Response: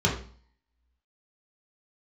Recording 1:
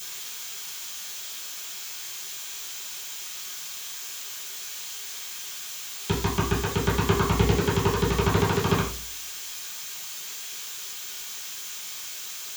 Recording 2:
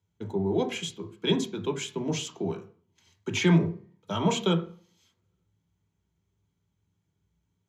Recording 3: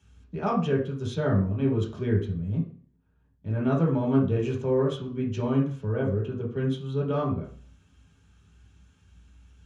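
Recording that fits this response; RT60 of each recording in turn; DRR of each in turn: 3; 0.45, 0.45, 0.45 s; -10.5, 5.0, -4.0 dB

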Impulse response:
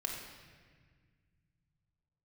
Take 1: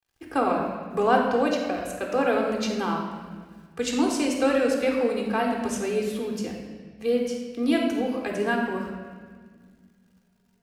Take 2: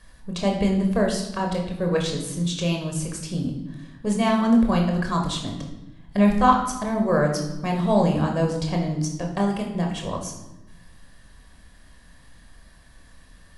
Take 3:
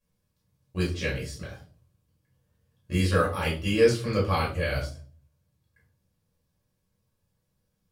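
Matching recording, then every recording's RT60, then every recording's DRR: 1; 1.6, 1.0, 0.45 s; 1.0, 1.0, -7.0 dB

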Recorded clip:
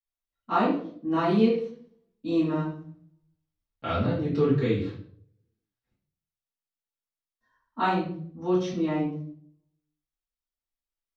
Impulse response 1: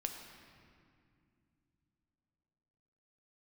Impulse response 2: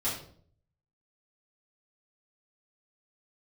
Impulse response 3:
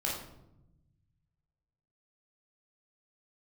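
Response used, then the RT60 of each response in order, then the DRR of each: 2; 2.4, 0.55, 0.85 s; 3.5, -10.0, -4.5 dB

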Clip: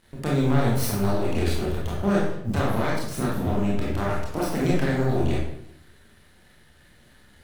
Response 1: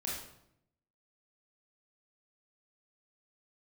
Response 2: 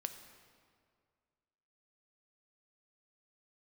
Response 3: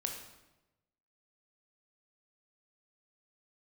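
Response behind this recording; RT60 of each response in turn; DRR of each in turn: 1; 0.75, 2.1, 1.0 s; -5.0, 7.5, 2.0 dB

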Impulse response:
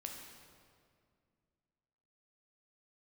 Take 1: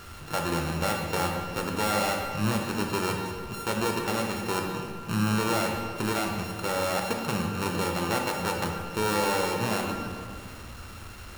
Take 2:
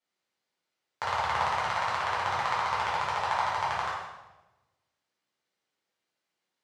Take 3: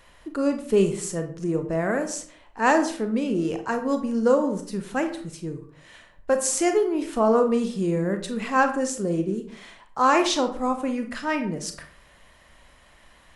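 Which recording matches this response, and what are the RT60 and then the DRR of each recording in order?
1; 2.2, 1.1, 0.55 s; 1.0, -8.0, 6.0 dB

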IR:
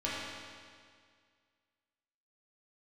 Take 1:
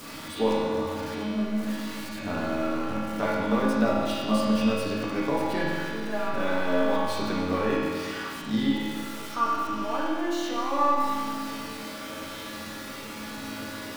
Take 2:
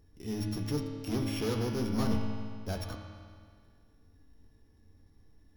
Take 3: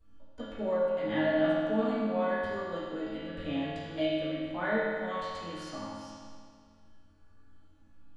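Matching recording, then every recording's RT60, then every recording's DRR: 1; 2.0, 2.0, 2.0 s; -8.5, 0.0, -16.0 dB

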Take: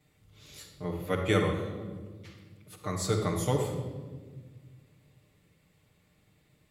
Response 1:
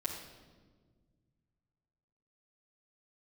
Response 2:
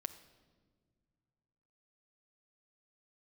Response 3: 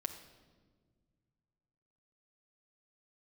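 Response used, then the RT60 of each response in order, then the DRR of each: 1; 1.5 s, not exponential, 1.6 s; -6.0, 7.5, 3.0 dB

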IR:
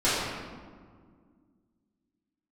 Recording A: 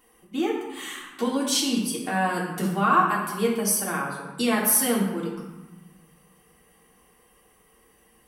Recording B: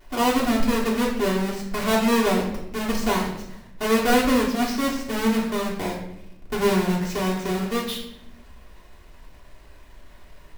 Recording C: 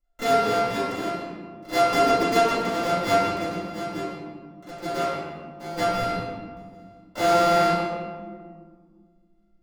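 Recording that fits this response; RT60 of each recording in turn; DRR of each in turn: C; 1.1, 0.80, 1.9 s; -5.5, -6.0, -12.5 dB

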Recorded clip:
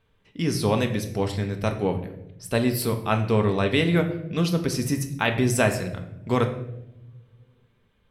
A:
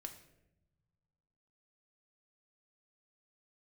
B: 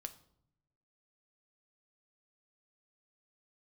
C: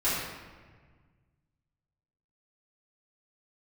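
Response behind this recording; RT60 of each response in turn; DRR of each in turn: A; not exponential, 0.70 s, 1.5 s; 5.0, 8.0, -13.5 dB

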